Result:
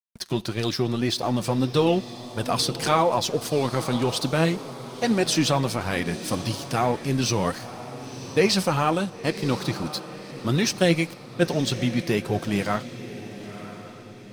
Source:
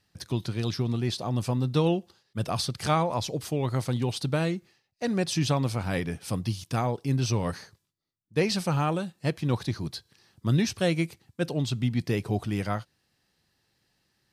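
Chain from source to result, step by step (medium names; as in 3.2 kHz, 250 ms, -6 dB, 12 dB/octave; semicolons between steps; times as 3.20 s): bass shelf 170 Hz -8.5 dB; in parallel at +2 dB: peak limiter -21 dBFS, peak gain reduction 10 dB; on the sum: crossover distortion -41.5 dBFS; flange 1.7 Hz, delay 1.6 ms, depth 4.8 ms, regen +44%; echo that smears into a reverb 1012 ms, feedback 43%, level -13 dB; on a send at -21 dB: reverberation, pre-delay 3 ms; on the sum: trim +5.5 dB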